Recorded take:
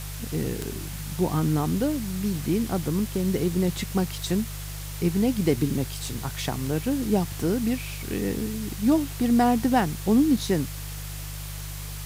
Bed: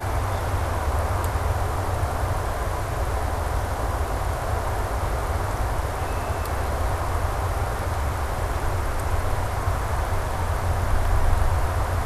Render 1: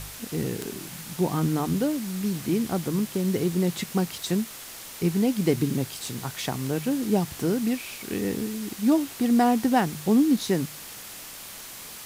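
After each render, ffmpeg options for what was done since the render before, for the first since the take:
-af "bandreject=f=50:t=h:w=4,bandreject=f=100:t=h:w=4,bandreject=f=150:t=h:w=4"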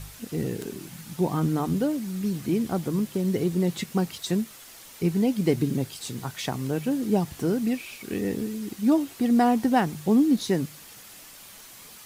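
-af "afftdn=nr=7:nf=-41"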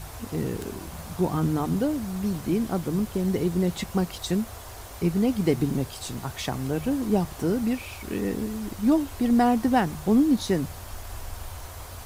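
-filter_complex "[1:a]volume=-17dB[a];[0:a][a]amix=inputs=2:normalize=0"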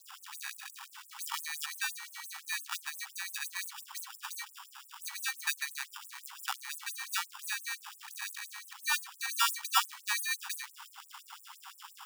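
-af "acrusher=samples=21:mix=1:aa=0.000001,afftfilt=real='re*gte(b*sr/1024,760*pow(7900/760,0.5+0.5*sin(2*PI*5.8*pts/sr)))':imag='im*gte(b*sr/1024,760*pow(7900/760,0.5+0.5*sin(2*PI*5.8*pts/sr)))':win_size=1024:overlap=0.75"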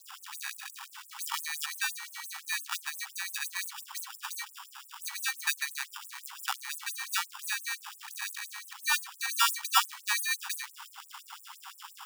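-af "volume=3dB"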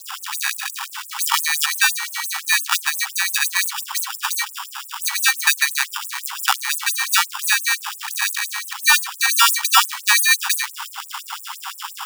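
-af "acontrast=25,alimiter=level_in=11dB:limit=-1dB:release=50:level=0:latency=1"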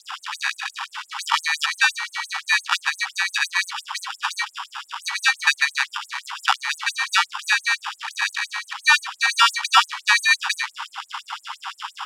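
-af "lowpass=4.2k"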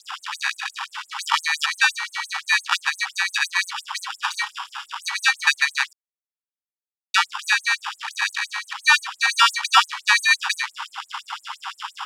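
-filter_complex "[0:a]asettb=1/sr,asplit=3[a][b][c];[a]atrim=end=4.204[d];[b]atrim=start=4.2:end=4.86,asetpts=PTS-STARTPTS,afade=t=in:d=0.004:c=qsin,afade=t=out:st=0.656:d=0.004:c=qsin,asplit=2[e][f];[f]adelay=32,volume=-11.5dB[g];[e][g]amix=inputs=2:normalize=0,atrim=end_sample=29106[h];[c]atrim=start=4.856[i];[d][h]acrossfade=d=0.004:c1=hsin:c2=qsin[j];[j][i]acrossfade=d=0.004:c1=qsin:c2=hsin,asplit=3[k][l][m];[k]atrim=end=5.93,asetpts=PTS-STARTPTS,afade=t=out:st=5.926:d=0.004:c=hsin[n];[l]atrim=start=5.93:end=7.14,asetpts=PTS-STARTPTS,volume=0[o];[m]atrim=start=7.14,asetpts=PTS-STARTPTS,afade=t=in:d=0.004:c=hsin[p];[n][o][p]concat=n=3:v=0:a=1"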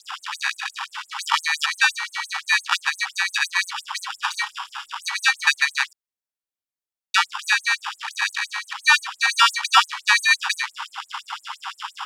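-filter_complex "[0:a]asettb=1/sr,asplit=3[a][b][c];[a]atrim=end=3.554[d];[b]atrim=start=3.55:end=5.19,asetpts=PTS-STARTPTS,afade=t=in:d=0.004:c=qsin,afade=t=out:st=1.636:d=0.004:c=qsin,lowshelf=f=160:g=8.5[e];[c]atrim=start=5.186[f];[d][e]acrossfade=d=0.004:c1=hsin:c2=qsin[g];[g][f]acrossfade=d=0.004:c1=qsin:c2=hsin"

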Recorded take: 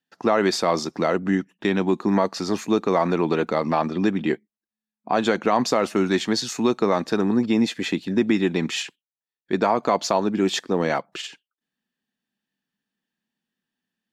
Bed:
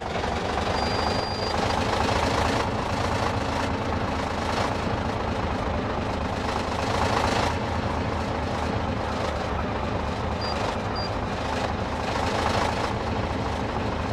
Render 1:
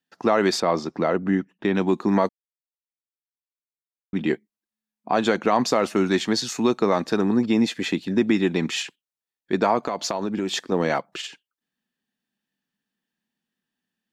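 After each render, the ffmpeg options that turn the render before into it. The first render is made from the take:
-filter_complex "[0:a]asettb=1/sr,asplit=3[a][b][c];[a]atrim=end=0.604[d];[b]atrim=start=0.6:end=1.75,asetpts=PTS-STARTPTS,afade=t=in:d=0.004:c=qsin,afade=t=out:st=1.146:d=0.004:c=qsin,aemphasis=mode=reproduction:type=75kf[e];[c]atrim=start=1.746[f];[d][e]acrossfade=d=0.004:c1=hsin:c2=qsin[g];[g][f]acrossfade=d=0.004:c1=qsin:c2=hsin,asettb=1/sr,asplit=3[h][i][j];[h]atrim=end=9.784[k];[i]atrim=start=9.78:end=10.72,asetpts=PTS-STARTPTS,afade=t=in:d=0.004:c=qsin,afade=t=out:st=0.936:d=0.004:c=qsin,acompressor=threshold=-21dB:ratio=6:attack=3.2:release=140:knee=1:detection=peak[l];[j]atrim=start=10.716[m];[k][l]acrossfade=d=0.004:c1=hsin:c2=qsin[n];[n][m]acrossfade=d=0.004:c1=qsin:c2=hsin,asplit=3[o][p][q];[o]atrim=end=2.29,asetpts=PTS-STARTPTS,afade=t=out:st=2.286:d=0.004:c=hsin[r];[p]atrim=start=2.29:end=4.13,asetpts=PTS-STARTPTS,volume=0[s];[q]atrim=start=4.13,asetpts=PTS-STARTPTS,afade=t=in:d=0.004:c=hsin[t];[r][s][t]concat=n=3:v=0:a=1"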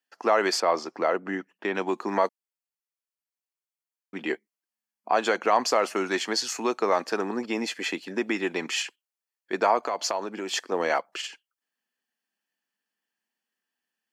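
-af "highpass=480,bandreject=f=3.7k:w=6.4"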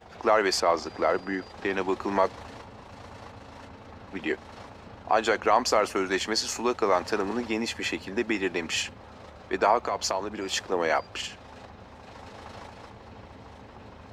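-filter_complex "[1:a]volume=-19.5dB[a];[0:a][a]amix=inputs=2:normalize=0"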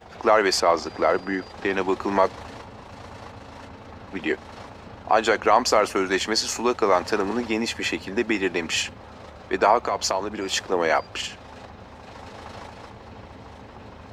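-af "volume=4dB"

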